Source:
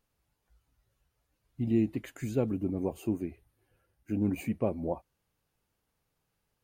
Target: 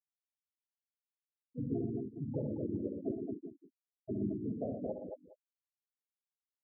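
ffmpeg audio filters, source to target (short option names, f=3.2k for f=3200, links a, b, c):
-filter_complex "[0:a]asplit=4[a][b][c][d];[b]asetrate=33038,aresample=44100,atempo=1.33484,volume=-11dB[e];[c]asetrate=52444,aresample=44100,atempo=0.840896,volume=-1dB[f];[d]asetrate=88200,aresample=44100,atempo=0.5,volume=-8dB[g];[a][e][f][g]amix=inputs=4:normalize=0,equalizer=f=3.8k:w=0.41:g=-3,acompressor=threshold=-41dB:ratio=2.5,afftfilt=real='re*gte(hypot(re,im),0.0501)':imag='im*gte(hypot(re,im),0.0501)':win_size=1024:overlap=0.75,asplit=2[h][i];[i]aecho=0:1:64|90|118|223|413:0.447|0.133|0.422|0.596|0.119[j];[h][j]amix=inputs=2:normalize=0,volume=1dB"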